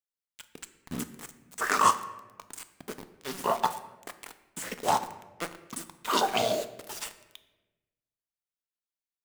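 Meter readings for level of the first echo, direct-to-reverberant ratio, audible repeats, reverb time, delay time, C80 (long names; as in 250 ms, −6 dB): no echo audible, 10.0 dB, no echo audible, 1.2 s, no echo audible, 15.0 dB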